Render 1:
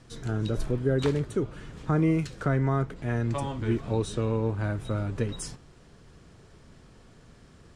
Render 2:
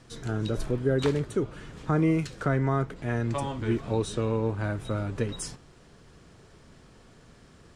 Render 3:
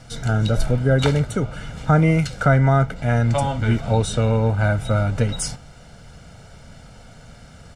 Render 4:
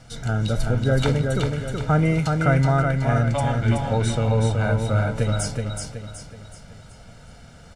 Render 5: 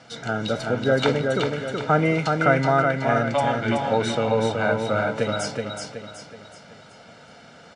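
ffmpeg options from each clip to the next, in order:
-af "lowshelf=f=190:g=-4,volume=1.19"
-af "aecho=1:1:1.4:0.73,volume=2.51"
-af "aecho=1:1:374|748|1122|1496|1870:0.631|0.265|0.111|0.0467|0.0196,volume=0.668"
-af "highpass=260,lowpass=5100,volume=1.58"

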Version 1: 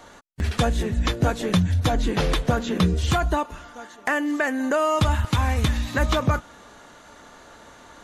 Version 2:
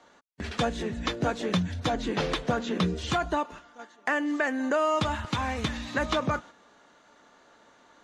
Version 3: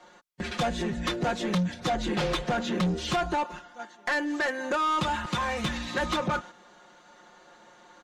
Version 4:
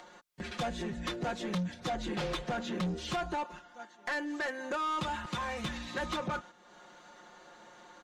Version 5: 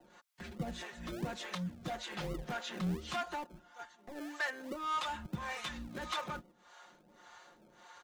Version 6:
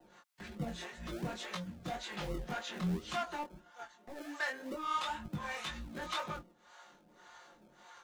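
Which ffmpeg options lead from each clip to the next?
-filter_complex "[0:a]agate=range=0.447:threshold=0.0141:ratio=16:detection=peak,acrossover=split=150 7700:gain=0.224 1 0.0891[s0][s1][s2];[s0][s1][s2]amix=inputs=3:normalize=0,volume=0.668"
-af "aecho=1:1:5.6:0.96,asoftclip=type=tanh:threshold=0.0708,volume=1.12"
-af "acompressor=mode=upward:threshold=0.0112:ratio=2.5,volume=0.447"
-filter_complex "[0:a]acrossover=split=540[s0][s1];[s0]aeval=exprs='val(0)*(1-1/2+1/2*cos(2*PI*1.7*n/s))':c=same[s2];[s1]aeval=exprs='val(0)*(1-1/2-1/2*cos(2*PI*1.7*n/s))':c=same[s3];[s2][s3]amix=inputs=2:normalize=0,acrossover=split=270|490|2800[s4][s5][s6][s7];[s5]acrusher=samples=37:mix=1:aa=0.000001:lfo=1:lforange=22.2:lforate=2.9[s8];[s4][s8][s6][s7]amix=inputs=4:normalize=0,volume=1.12"
-af "flanger=delay=18.5:depth=5.2:speed=1.9,volume=1.41"

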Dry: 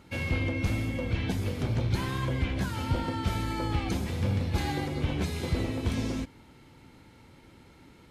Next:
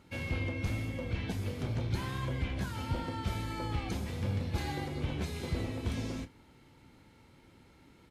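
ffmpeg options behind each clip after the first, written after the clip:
-filter_complex "[0:a]asplit=2[s0][s1];[s1]adelay=29,volume=0.251[s2];[s0][s2]amix=inputs=2:normalize=0,volume=0.531"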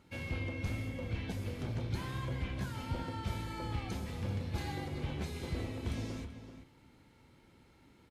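-filter_complex "[0:a]asplit=2[s0][s1];[s1]adelay=384.8,volume=0.316,highshelf=f=4000:g=-8.66[s2];[s0][s2]amix=inputs=2:normalize=0,volume=0.668"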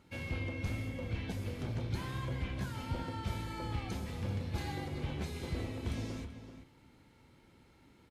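-af anull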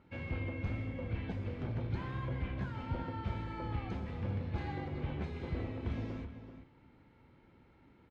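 -af "lowpass=2300"

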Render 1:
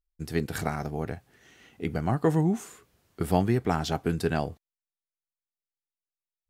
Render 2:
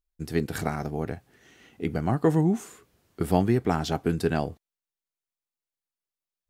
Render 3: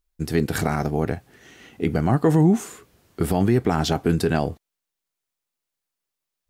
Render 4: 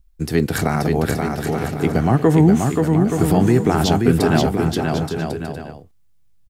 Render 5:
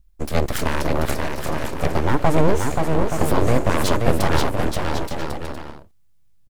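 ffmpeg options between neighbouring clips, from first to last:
-af "equalizer=f=300:t=o:w=1.5:g=3"
-af "alimiter=limit=0.15:level=0:latency=1:release=29,volume=2.37"
-filter_complex "[0:a]acrossover=split=140|1100|7000[s0][s1][s2][s3];[s0]acompressor=mode=upward:threshold=0.00891:ratio=2.5[s4];[s4][s1][s2][s3]amix=inputs=4:normalize=0,aecho=1:1:530|874.5|1098|1244|1339:0.631|0.398|0.251|0.158|0.1,volume=1.5"
-af "aeval=exprs='abs(val(0))':c=same"

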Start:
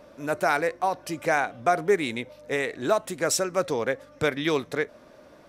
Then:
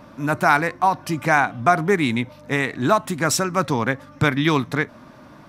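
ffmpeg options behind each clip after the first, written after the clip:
-af "equalizer=f=125:t=o:w=1:g=9,equalizer=f=250:t=o:w=1:g=6,equalizer=f=500:t=o:w=1:g=-10,equalizer=f=1000:t=o:w=1:g=7,equalizer=f=8000:t=o:w=1:g=-3,volume=1.88"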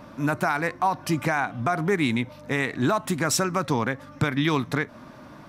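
-af "alimiter=limit=0.224:level=0:latency=1:release=165"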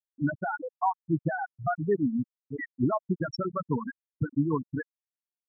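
-filter_complex "[0:a]afftfilt=real='re*gte(hypot(re,im),0.355)':imag='im*gte(hypot(re,im),0.355)':win_size=1024:overlap=0.75,acrossover=split=940[s0][s1];[s0]aeval=exprs='val(0)*(1-0.5/2+0.5/2*cos(2*PI*7.7*n/s))':c=same[s2];[s1]aeval=exprs='val(0)*(1-0.5/2-0.5/2*cos(2*PI*7.7*n/s))':c=same[s3];[s2][s3]amix=inputs=2:normalize=0"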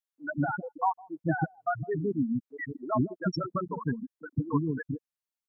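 -filter_complex "[0:a]acrossover=split=410[s0][s1];[s0]adelay=160[s2];[s2][s1]amix=inputs=2:normalize=0"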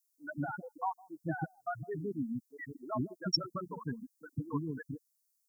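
-af "aexciter=amount=13.1:drive=2.8:freq=4400,volume=0.398"

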